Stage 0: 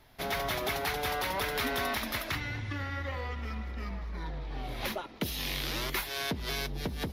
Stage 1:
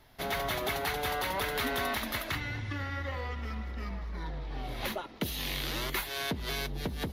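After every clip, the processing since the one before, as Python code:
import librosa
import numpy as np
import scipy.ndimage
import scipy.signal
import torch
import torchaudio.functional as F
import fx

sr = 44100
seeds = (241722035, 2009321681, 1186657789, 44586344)

y = fx.notch(x, sr, hz=2400.0, q=26.0)
y = fx.dynamic_eq(y, sr, hz=5300.0, q=6.9, threshold_db=-58.0, ratio=4.0, max_db=-6)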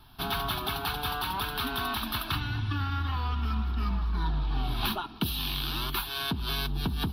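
y = fx.fixed_phaser(x, sr, hz=2000.0, stages=6)
y = fx.rider(y, sr, range_db=10, speed_s=0.5)
y = y * librosa.db_to_amplitude(6.0)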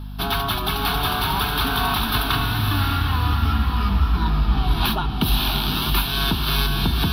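y = fx.add_hum(x, sr, base_hz=50, snr_db=10)
y = fx.echo_diffused(y, sr, ms=579, feedback_pct=41, wet_db=-3.0)
y = y * librosa.db_to_amplitude(7.5)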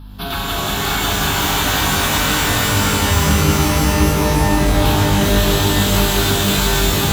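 y = fx.rev_shimmer(x, sr, seeds[0], rt60_s=3.5, semitones=12, shimmer_db=-2, drr_db=-4.5)
y = y * librosa.db_to_amplitude(-3.0)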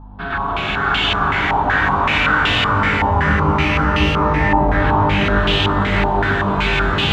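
y = fx.filter_held_lowpass(x, sr, hz=5.3, low_hz=870.0, high_hz=2900.0)
y = y * librosa.db_to_amplitude(-2.5)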